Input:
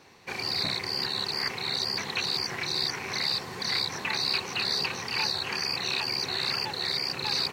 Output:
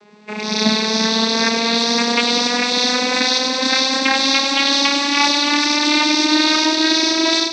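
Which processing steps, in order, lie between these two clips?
vocoder on a gliding note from G#3, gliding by +8 st; thin delay 98 ms, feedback 80%, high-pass 2800 Hz, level -3.5 dB; AGC gain up to 9 dB; gain +4.5 dB

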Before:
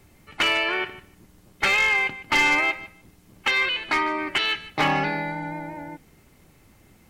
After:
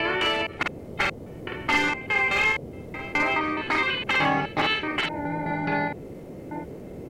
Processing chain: slices in reverse order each 0.21 s, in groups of 4; high shelf 3100 Hz -8 dB; doubler 48 ms -2 dB; in parallel at +2 dB: compressor, threshold -32 dBFS, peak gain reduction 14.5 dB; on the sum: band noise 70–520 Hz -36 dBFS; gain -3.5 dB

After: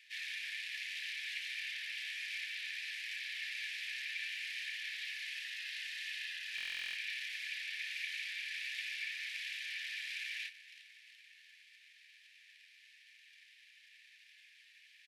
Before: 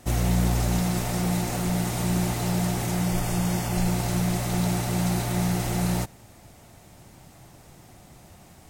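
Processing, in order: tape spacing loss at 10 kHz 21 dB; frequency-shifting echo 0.199 s, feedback 62%, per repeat -65 Hz, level -19 dB; soft clip -19 dBFS, distortion -18 dB; companded quantiser 6-bit; speed mistake 78 rpm record played at 45 rpm; rippled Chebyshev high-pass 1700 Hz, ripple 6 dB; resonant high shelf 4900 Hz -12 dB, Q 1.5; stuck buffer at 6.56, samples 1024, times 16; gain +10 dB

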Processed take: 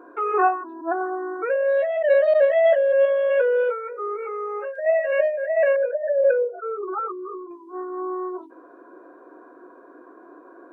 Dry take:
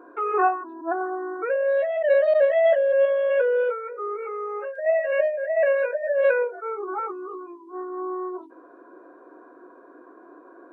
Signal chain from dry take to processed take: 5.76–7.51 formant sharpening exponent 2; gain +1.5 dB

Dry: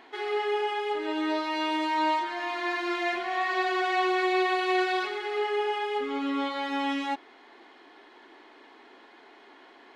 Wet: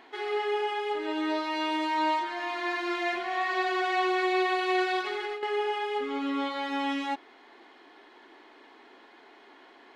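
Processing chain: 5.01–5.43 negative-ratio compressor -33 dBFS, ratio -1; gain -1 dB

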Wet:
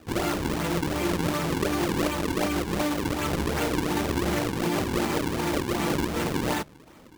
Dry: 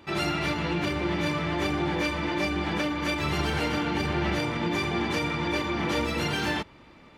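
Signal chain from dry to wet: LPF 2700 Hz 12 dB/oct; notches 50/100/150 Hz; decimation with a swept rate 40×, swing 160% 2.7 Hz; low shelf 85 Hz -6 dB; gain +2.5 dB

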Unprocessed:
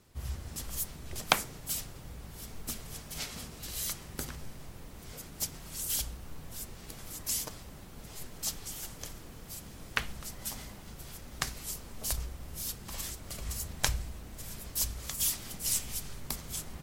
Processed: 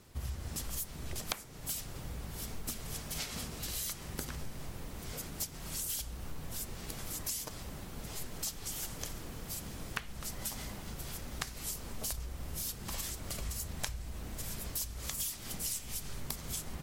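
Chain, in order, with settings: compressor 6:1, threshold -39 dBFS, peak gain reduction 20 dB; gain +4 dB

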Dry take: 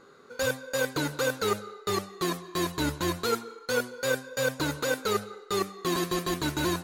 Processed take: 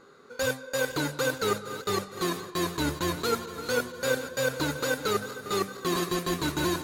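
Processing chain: regenerating reverse delay 0.231 s, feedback 76%, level -13 dB

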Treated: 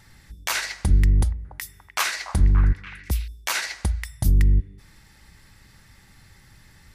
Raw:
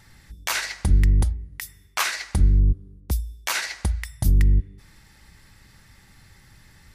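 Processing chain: 0.87–3.28 delay with a stepping band-pass 0.288 s, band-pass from 780 Hz, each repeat 0.7 oct, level -7 dB

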